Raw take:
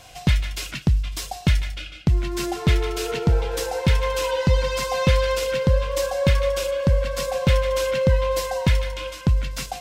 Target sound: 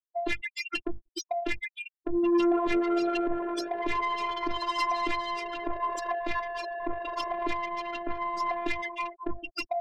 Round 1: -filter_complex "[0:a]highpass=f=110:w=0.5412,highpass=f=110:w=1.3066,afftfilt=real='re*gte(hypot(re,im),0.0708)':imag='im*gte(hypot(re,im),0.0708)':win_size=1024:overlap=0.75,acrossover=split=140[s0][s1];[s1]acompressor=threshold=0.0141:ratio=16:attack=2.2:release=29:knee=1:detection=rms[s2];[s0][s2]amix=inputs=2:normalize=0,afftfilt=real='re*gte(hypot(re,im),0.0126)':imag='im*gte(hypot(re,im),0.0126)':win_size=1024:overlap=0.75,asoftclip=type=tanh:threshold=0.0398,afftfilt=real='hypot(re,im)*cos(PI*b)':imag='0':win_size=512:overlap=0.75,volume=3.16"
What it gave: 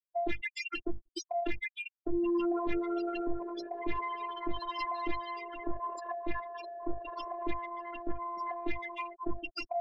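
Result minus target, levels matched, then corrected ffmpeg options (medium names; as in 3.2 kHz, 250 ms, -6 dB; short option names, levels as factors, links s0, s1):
compression: peak gain reduction +9.5 dB
-filter_complex "[0:a]highpass=f=110:w=0.5412,highpass=f=110:w=1.3066,afftfilt=real='re*gte(hypot(re,im),0.0708)':imag='im*gte(hypot(re,im),0.0708)':win_size=1024:overlap=0.75,acrossover=split=140[s0][s1];[s1]acompressor=threshold=0.0447:ratio=16:attack=2.2:release=29:knee=1:detection=rms[s2];[s0][s2]amix=inputs=2:normalize=0,afftfilt=real='re*gte(hypot(re,im),0.0126)':imag='im*gte(hypot(re,im),0.0126)':win_size=1024:overlap=0.75,asoftclip=type=tanh:threshold=0.0398,afftfilt=real='hypot(re,im)*cos(PI*b)':imag='0':win_size=512:overlap=0.75,volume=3.16"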